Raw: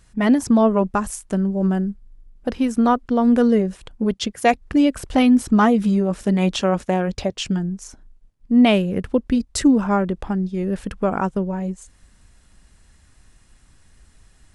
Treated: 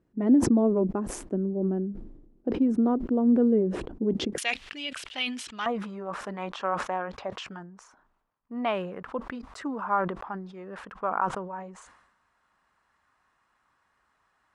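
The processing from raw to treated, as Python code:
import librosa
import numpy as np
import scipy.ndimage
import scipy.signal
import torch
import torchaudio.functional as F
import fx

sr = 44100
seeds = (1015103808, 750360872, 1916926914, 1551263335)

y = fx.bandpass_q(x, sr, hz=fx.steps((0.0, 330.0), (4.38, 3000.0), (5.66, 1100.0)), q=2.4)
y = fx.sustainer(y, sr, db_per_s=60.0)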